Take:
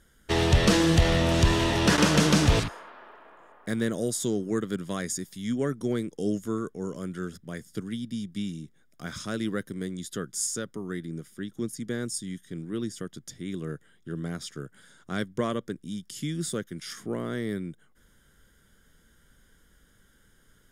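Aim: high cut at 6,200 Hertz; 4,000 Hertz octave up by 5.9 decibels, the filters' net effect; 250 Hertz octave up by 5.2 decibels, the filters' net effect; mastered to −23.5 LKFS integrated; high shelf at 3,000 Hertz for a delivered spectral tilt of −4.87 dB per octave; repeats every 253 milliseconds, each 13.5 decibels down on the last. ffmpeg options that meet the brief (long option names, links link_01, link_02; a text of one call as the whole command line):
ffmpeg -i in.wav -af "lowpass=6200,equalizer=frequency=250:width_type=o:gain=7,highshelf=frequency=3000:gain=3.5,equalizer=frequency=4000:width_type=o:gain=5.5,aecho=1:1:253|506:0.211|0.0444,volume=1dB" out.wav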